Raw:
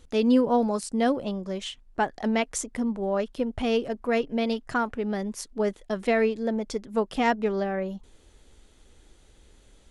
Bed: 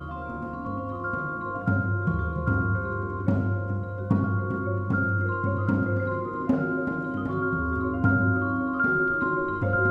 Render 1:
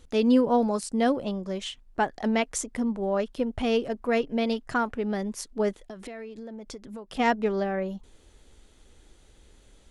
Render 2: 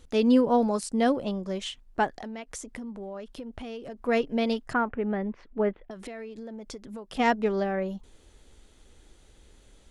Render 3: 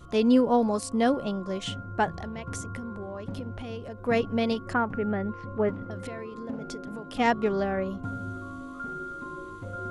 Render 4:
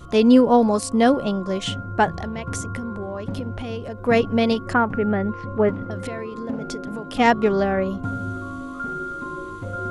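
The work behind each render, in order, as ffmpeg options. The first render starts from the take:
-filter_complex "[0:a]asplit=3[a][b][c];[a]afade=t=out:st=5.78:d=0.02[d];[b]acompressor=threshold=-36dB:ratio=12:attack=3.2:release=140:knee=1:detection=peak,afade=t=in:st=5.78:d=0.02,afade=t=out:st=7.18:d=0.02[e];[c]afade=t=in:st=7.18:d=0.02[f];[d][e][f]amix=inputs=3:normalize=0"
-filter_complex "[0:a]asettb=1/sr,asplit=3[a][b][c];[a]atrim=end=2.144[d];[b]atrim=start=2.14:end=4.06,asetpts=PTS-STARTPTS,afade=t=in:d=0.004:c=qsin,afade=t=out:st=1.916:d=0.004:c=qsin,acompressor=threshold=-35dB:ratio=8:attack=3.2:release=140:knee=1:detection=peak[e];[c]atrim=start=4.056[f];[d][e]acrossfade=d=0.004:c1=hsin:c2=qsin[g];[g][f]acrossfade=d=0.004:c1=qsin:c2=hsin,asettb=1/sr,asplit=3[h][i][j];[h]atrim=end=4.734[k];[i]atrim=start=4.73:end=5.91,asetpts=PTS-STARTPTS,afade=t=in:d=0.004:c=qsin,afade=t=out:st=1.176:d=0.004:c=qsin,lowpass=f=2.5k:w=0.5412,lowpass=f=2.5k:w=1.3066[l];[j]atrim=start=5.906[m];[k][l]acrossfade=d=0.004:c1=hsin:c2=qsin[n];[n][m]acrossfade=d=0.004:c1=qsin:c2=hsin"
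-filter_complex "[1:a]volume=-13dB[a];[0:a][a]amix=inputs=2:normalize=0"
-af "volume=7dB"

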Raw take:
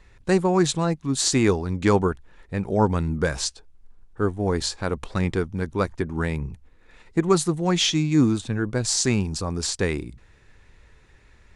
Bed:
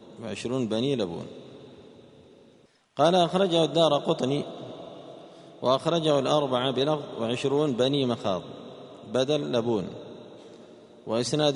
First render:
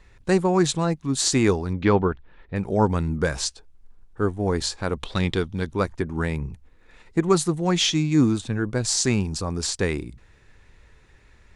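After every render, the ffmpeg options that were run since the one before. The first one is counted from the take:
-filter_complex "[0:a]asettb=1/sr,asplit=3[a][b][c];[a]atrim=end=1.734[d];[b]atrim=start=1.73:end=2.56,asetpts=PTS-STARTPTS,afade=t=in:d=0.004:c=qsin,afade=t=out:st=0.826:d=0.004:c=qsin,lowpass=f=4k:w=0.5412,lowpass=f=4k:w=1.3066[e];[c]atrim=start=2.556[f];[d][e]acrossfade=d=0.004:c1=hsin:c2=qsin[g];[g][f]acrossfade=d=0.004:c1=qsin:c2=hsin,asettb=1/sr,asplit=3[h][i][j];[h]atrim=end=5.004[k];[i]atrim=start=5:end=5.71,asetpts=PTS-STARTPTS,afade=t=in:d=0.004:c=qsin,afade=t=out:st=0.706:d=0.004:c=qsin,equalizer=f=3.5k:t=o:w=0.66:g=12[l];[j]atrim=start=5.706[m];[k][l]acrossfade=d=0.004:c1=hsin:c2=qsin[n];[n][m]acrossfade=d=0.004:c1=qsin:c2=hsin"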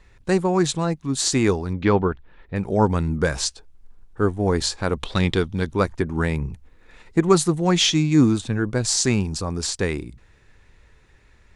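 -af "dynaudnorm=f=430:g=13:m=4.5dB"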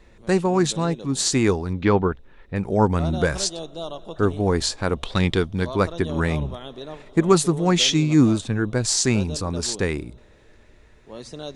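-filter_complex "[1:a]volume=-11.5dB[a];[0:a][a]amix=inputs=2:normalize=0"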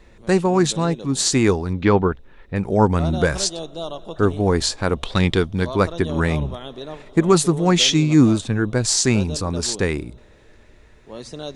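-af "volume=2.5dB,alimiter=limit=-3dB:level=0:latency=1"

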